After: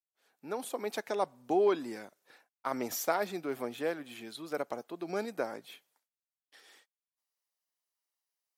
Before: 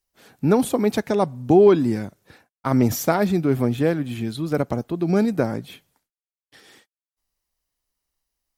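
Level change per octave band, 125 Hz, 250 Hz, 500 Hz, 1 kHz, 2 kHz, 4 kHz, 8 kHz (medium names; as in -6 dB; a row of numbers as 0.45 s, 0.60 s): -29.0 dB, -19.0 dB, -13.0 dB, -9.0 dB, -8.5 dB, -8.5 dB, -8.5 dB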